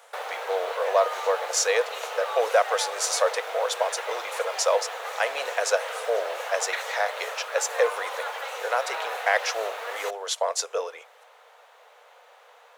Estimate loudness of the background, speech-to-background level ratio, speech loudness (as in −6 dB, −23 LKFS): −33.0 LKFS, 6.0 dB, −27.0 LKFS